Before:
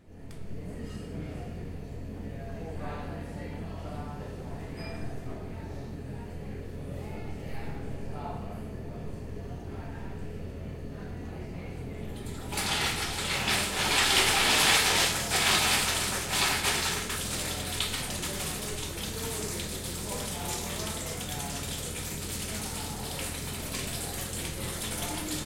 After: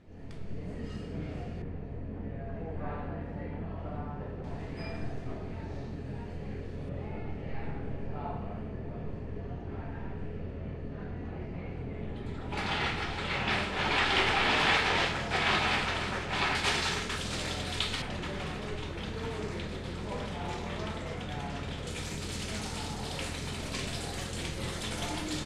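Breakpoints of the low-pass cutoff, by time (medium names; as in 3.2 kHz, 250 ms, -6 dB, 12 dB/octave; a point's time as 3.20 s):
5.3 kHz
from 1.62 s 2 kHz
from 4.44 s 5.2 kHz
from 6.89 s 2.7 kHz
from 16.55 s 5.1 kHz
from 18.02 s 2.6 kHz
from 21.87 s 5.9 kHz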